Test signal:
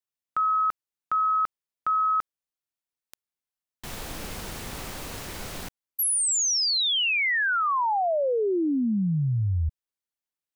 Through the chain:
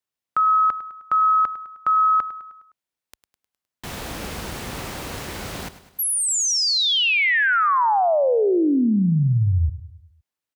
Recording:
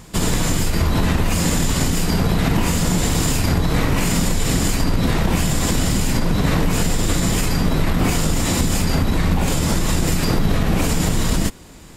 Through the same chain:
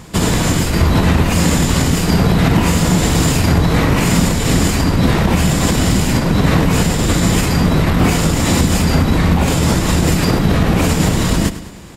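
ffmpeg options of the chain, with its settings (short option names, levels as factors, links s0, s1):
-filter_complex "[0:a]highpass=43,highshelf=f=4900:g=-5,asplit=2[s0][s1];[s1]aecho=0:1:103|206|309|412|515:0.188|0.0979|0.0509|0.0265|0.0138[s2];[s0][s2]amix=inputs=2:normalize=0,alimiter=level_in=2.24:limit=0.891:release=50:level=0:latency=1,volume=0.891"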